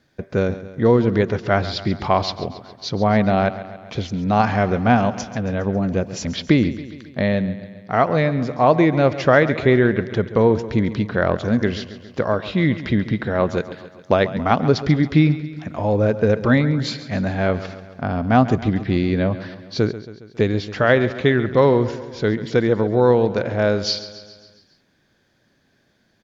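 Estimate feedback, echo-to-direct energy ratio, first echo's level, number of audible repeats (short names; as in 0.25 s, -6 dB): 58%, -12.5 dB, -14.5 dB, 5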